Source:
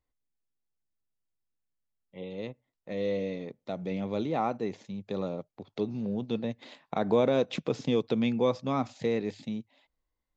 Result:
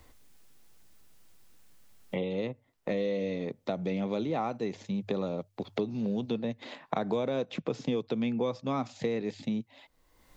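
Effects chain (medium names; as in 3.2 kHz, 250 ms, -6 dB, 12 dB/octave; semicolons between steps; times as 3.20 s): hum notches 50/100 Hz; three bands compressed up and down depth 100%; trim -2 dB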